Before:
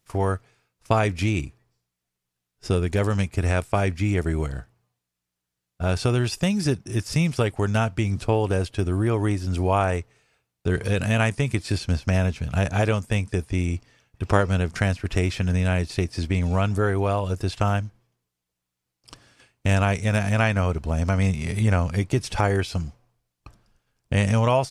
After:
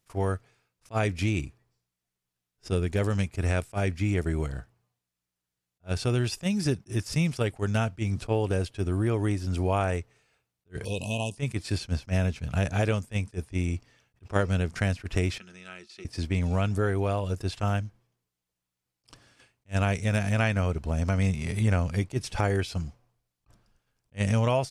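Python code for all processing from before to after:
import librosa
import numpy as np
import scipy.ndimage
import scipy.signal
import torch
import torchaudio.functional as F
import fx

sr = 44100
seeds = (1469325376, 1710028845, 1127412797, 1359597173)

y = fx.chain(x, sr, fx.brickwall_bandstop(low_hz=1100.0, high_hz=2500.0),
    fx.low_shelf(hz=460.0, db=-7.0), at=(10.85, 11.37))
y = fx.chain(y, sr, fx.lowpass(hz=4000.0, slope=12),
    fx.differentiator(),
    fx.small_body(hz=(210.0, 350.0, 1300.0), ring_ms=85, db=17), at=(15.38, 16.05))
y = fx.dynamic_eq(y, sr, hz=1000.0, q=1.5, threshold_db=-35.0, ratio=4.0, max_db=-4)
y = fx.attack_slew(y, sr, db_per_s=440.0)
y = F.gain(torch.from_numpy(y), -3.5).numpy()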